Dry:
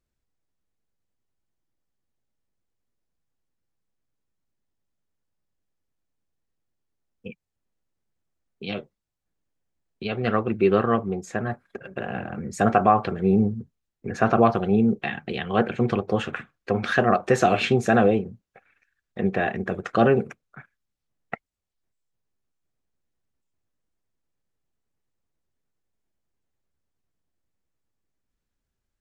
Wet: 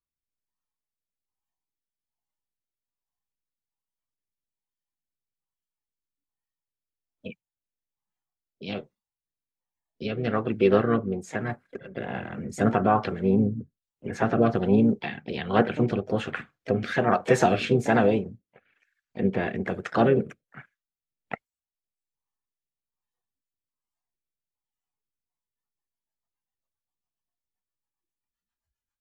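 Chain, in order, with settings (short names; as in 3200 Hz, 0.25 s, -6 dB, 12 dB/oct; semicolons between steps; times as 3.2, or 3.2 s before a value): harmoniser +4 st -10 dB; rotary speaker horn 1.2 Hz, later 7.5 Hz, at 25.07; spectral noise reduction 15 dB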